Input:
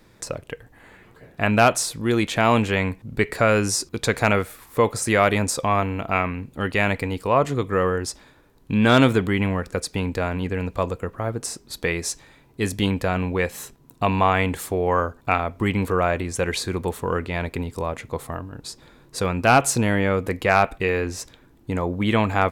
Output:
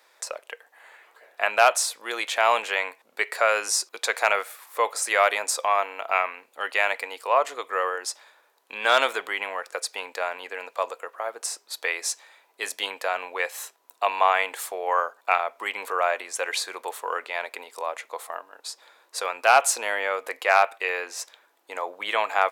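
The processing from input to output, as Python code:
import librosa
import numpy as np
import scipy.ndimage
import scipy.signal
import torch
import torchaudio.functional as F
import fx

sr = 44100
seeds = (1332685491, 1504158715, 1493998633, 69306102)

y = scipy.signal.sosfilt(scipy.signal.butter(4, 590.0, 'highpass', fs=sr, output='sos'), x)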